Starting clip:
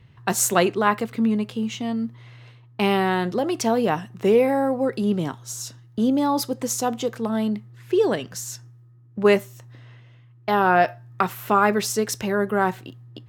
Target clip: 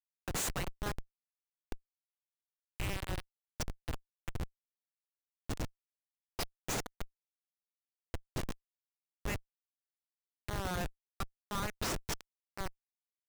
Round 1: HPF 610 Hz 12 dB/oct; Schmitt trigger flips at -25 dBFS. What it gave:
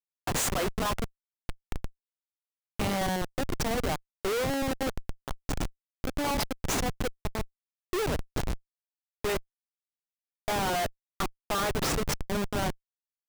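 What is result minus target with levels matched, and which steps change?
500 Hz band +5.0 dB
change: HPF 1800 Hz 12 dB/oct

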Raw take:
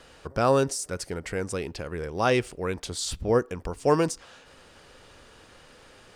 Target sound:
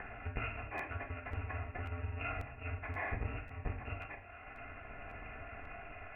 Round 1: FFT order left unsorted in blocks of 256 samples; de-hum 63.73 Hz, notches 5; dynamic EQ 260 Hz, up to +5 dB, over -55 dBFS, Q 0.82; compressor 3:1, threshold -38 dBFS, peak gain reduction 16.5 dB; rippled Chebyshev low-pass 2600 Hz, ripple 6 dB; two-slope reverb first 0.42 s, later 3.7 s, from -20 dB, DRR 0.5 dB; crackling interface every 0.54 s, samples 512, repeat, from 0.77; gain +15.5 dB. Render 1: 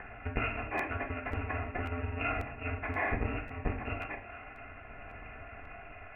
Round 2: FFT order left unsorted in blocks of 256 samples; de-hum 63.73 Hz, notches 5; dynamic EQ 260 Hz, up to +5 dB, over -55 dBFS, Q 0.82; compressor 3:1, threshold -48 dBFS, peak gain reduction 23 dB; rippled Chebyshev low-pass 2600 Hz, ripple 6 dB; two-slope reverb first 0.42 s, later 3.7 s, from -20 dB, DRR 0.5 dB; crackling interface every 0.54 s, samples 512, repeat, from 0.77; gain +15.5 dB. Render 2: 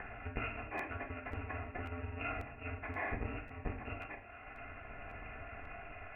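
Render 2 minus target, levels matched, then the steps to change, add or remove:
250 Hz band +4.0 dB
change: dynamic EQ 93 Hz, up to +5 dB, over -55 dBFS, Q 0.82

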